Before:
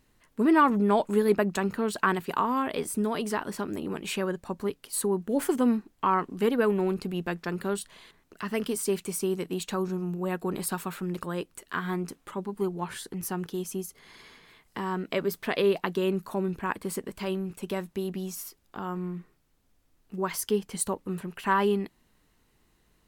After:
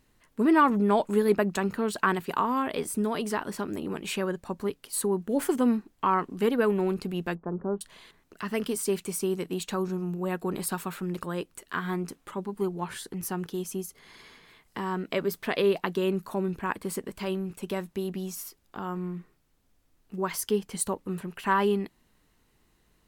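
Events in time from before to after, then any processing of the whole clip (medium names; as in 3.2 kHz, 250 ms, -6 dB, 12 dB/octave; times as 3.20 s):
7.35–7.81 s: low-pass 1 kHz 24 dB/octave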